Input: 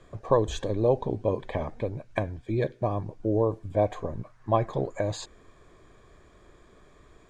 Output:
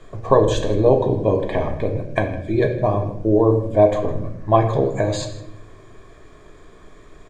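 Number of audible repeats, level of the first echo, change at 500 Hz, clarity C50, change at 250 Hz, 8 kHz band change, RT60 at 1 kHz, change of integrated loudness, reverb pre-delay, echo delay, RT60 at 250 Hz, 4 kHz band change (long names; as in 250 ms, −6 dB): 1, −17.5 dB, +9.5 dB, 8.5 dB, +10.0 dB, can't be measured, 0.60 s, +9.5 dB, 3 ms, 158 ms, 1.3 s, +8.5 dB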